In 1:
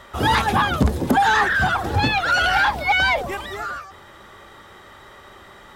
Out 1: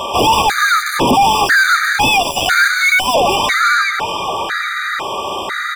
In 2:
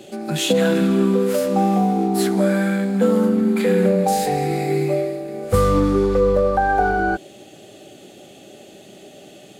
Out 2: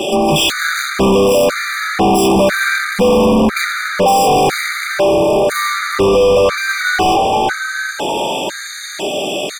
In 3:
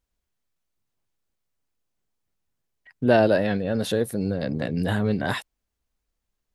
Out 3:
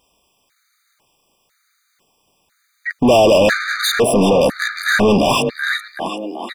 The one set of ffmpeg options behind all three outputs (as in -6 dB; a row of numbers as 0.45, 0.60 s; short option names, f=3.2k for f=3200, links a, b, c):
-filter_complex "[0:a]asplit=6[a][b][c][d][e][f];[b]adelay=379,afreqshift=34,volume=-15dB[g];[c]adelay=758,afreqshift=68,volume=-21dB[h];[d]adelay=1137,afreqshift=102,volume=-27dB[i];[e]adelay=1516,afreqshift=136,volume=-33.1dB[j];[f]adelay=1895,afreqshift=170,volume=-39.1dB[k];[a][g][h][i][j][k]amix=inputs=6:normalize=0,asplit=2[l][m];[m]highpass=f=720:p=1,volume=36dB,asoftclip=type=tanh:threshold=-4dB[n];[l][n]amix=inputs=2:normalize=0,lowpass=f=6k:p=1,volume=-6dB,afftfilt=real='re*gt(sin(2*PI*1*pts/sr)*(1-2*mod(floor(b*sr/1024/1200),2)),0)':imag='im*gt(sin(2*PI*1*pts/sr)*(1-2*mod(floor(b*sr/1024/1200),2)),0)':win_size=1024:overlap=0.75"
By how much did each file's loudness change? +5.5, +5.0, +8.5 LU